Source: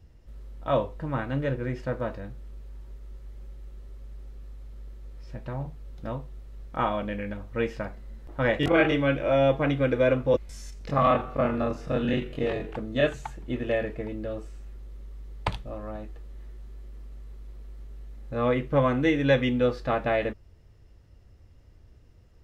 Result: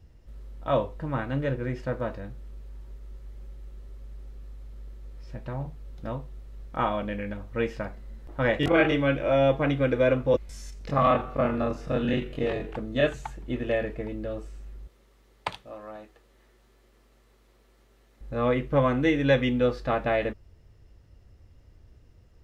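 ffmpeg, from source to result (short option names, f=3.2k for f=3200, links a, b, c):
-filter_complex "[0:a]asettb=1/sr,asplit=3[a][b][c];[a]atrim=end=14.874[d];[b]atrim=start=14.87:end=18.21,asetpts=PTS-STARTPTS,afade=t=in:d=0.004:c=qsin,afade=t=out:st=3.336:d=0.004:c=qsin,highpass=f=560:p=1[e];[c]atrim=start=18.206[f];[d][e]acrossfade=d=0.004:c1=hsin:c2=qsin[g];[g][f]acrossfade=d=0.004:c1=qsin:c2=hsin"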